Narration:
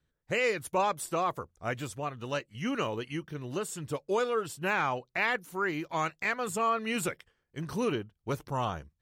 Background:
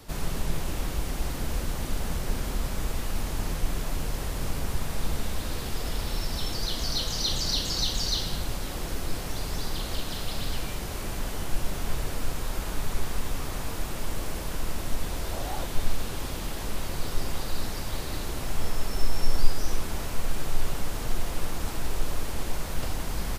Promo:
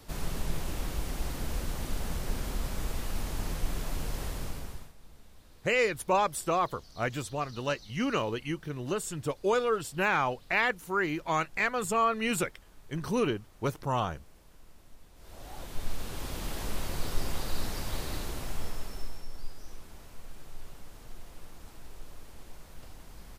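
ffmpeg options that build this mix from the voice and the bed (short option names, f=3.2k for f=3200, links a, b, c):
-filter_complex "[0:a]adelay=5350,volume=2dB[a];[1:a]volume=19dB,afade=t=out:st=4.27:d=0.66:silence=0.0841395,afade=t=in:st=15.15:d=1.4:silence=0.0707946,afade=t=out:st=18.06:d=1.19:silence=0.16788[b];[a][b]amix=inputs=2:normalize=0"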